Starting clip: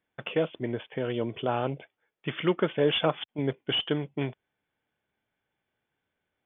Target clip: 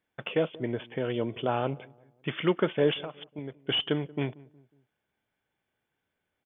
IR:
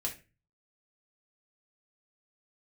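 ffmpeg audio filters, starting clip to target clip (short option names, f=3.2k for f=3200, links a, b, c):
-filter_complex "[0:a]asettb=1/sr,asplit=3[a][b][c];[a]atrim=end=2.934[d];[b]atrim=start=2.93:end=3.6,asetpts=PTS-STARTPTS,afade=t=in:d=0.004:c=qsin,afade=t=out:st=0.666:d=0.004:c=qsin,acompressor=threshold=-35dB:ratio=10[e];[c]atrim=start=3.596[f];[d][e]acrossfade=d=0.004:c1=hsin:c2=qsin[g];[g][f]acrossfade=d=0.004:c1=qsin:c2=hsin,asplit=2[h][i];[i]adelay=182,lowpass=f=840:p=1,volume=-21dB,asplit=2[j][k];[k]adelay=182,lowpass=f=840:p=1,volume=0.46,asplit=2[l][m];[m]adelay=182,lowpass=f=840:p=1,volume=0.46[n];[j][l][n]amix=inputs=3:normalize=0[o];[h][o]amix=inputs=2:normalize=0"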